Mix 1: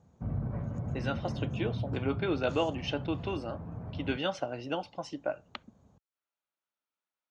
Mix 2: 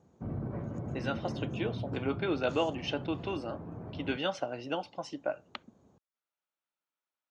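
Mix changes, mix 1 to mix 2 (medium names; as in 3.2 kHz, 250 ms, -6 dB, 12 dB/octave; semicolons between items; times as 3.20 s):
background: add peaking EQ 350 Hz +9 dB 0.59 oct; master: add bass shelf 89 Hz -11.5 dB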